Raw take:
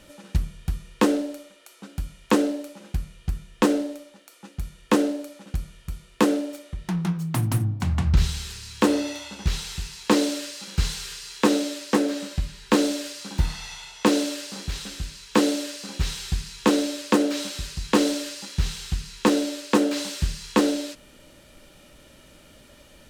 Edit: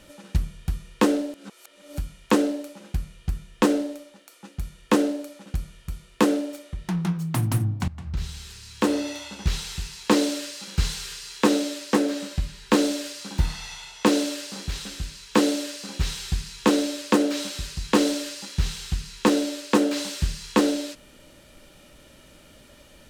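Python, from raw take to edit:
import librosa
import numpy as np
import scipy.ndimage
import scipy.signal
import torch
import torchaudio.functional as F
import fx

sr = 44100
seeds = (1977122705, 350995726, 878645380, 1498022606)

y = fx.edit(x, sr, fx.reverse_span(start_s=1.34, length_s=0.64),
    fx.fade_in_from(start_s=7.88, length_s=1.35, floor_db=-18.5), tone=tone)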